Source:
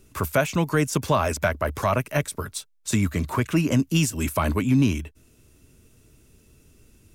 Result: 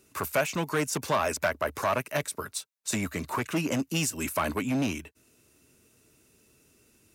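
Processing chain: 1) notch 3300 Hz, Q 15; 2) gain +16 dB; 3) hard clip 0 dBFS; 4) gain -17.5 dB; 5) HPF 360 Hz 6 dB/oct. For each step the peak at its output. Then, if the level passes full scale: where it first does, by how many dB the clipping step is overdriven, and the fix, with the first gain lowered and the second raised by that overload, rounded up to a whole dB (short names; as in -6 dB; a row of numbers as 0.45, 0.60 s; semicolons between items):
-10.0, +6.0, 0.0, -17.5, -14.0 dBFS; step 2, 6.0 dB; step 2 +10 dB, step 4 -11.5 dB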